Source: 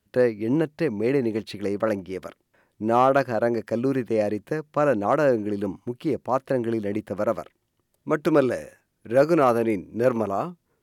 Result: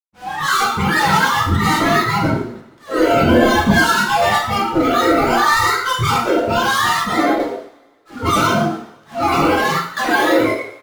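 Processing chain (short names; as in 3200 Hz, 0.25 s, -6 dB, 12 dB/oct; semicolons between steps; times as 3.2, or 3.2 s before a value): spectrum mirrored in octaves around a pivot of 610 Hz; recorder AGC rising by 23 dB/s; thirty-one-band EQ 630 Hz -8 dB, 1250 Hz +4 dB, 2500 Hz -9 dB; fuzz box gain 40 dB, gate -43 dBFS; frequency-shifting echo 0.113 s, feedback 33%, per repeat +110 Hz, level -6.5 dB; auto swell 0.222 s; spectral noise reduction 15 dB; 3.23–3.77 low shelf 390 Hz +8 dB; 9.55–10.09 level quantiser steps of 17 dB; two-slope reverb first 0.55 s, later 1.8 s, from -24 dB, DRR -1.5 dB; 6.71–7.4 three-band expander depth 70%; gain -4 dB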